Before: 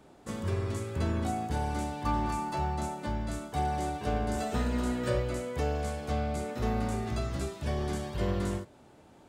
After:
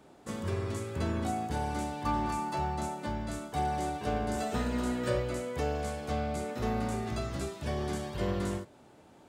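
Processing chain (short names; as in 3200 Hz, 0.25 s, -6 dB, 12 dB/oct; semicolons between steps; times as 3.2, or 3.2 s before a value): low shelf 65 Hz -9 dB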